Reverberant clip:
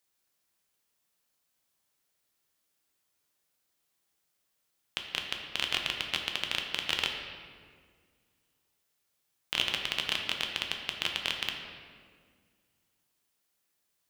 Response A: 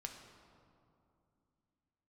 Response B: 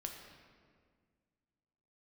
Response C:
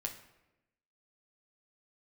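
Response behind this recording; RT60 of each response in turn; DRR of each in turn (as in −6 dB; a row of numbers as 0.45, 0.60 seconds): B; 2.6, 1.8, 1.0 seconds; 2.5, 2.0, 3.0 decibels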